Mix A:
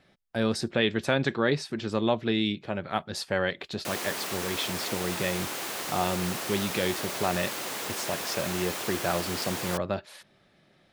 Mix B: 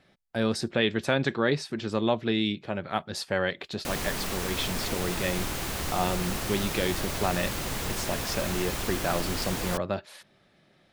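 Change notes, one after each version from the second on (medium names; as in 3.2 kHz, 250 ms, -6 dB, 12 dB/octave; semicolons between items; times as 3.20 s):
background: remove high-pass 350 Hz 12 dB/octave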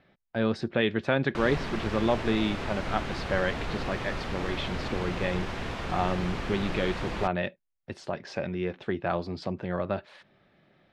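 background: entry -2.50 s; master: add low-pass 2.9 kHz 12 dB/octave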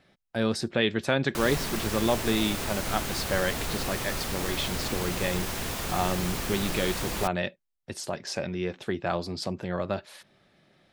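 master: remove low-pass 2.9 kHz 12 dB/octave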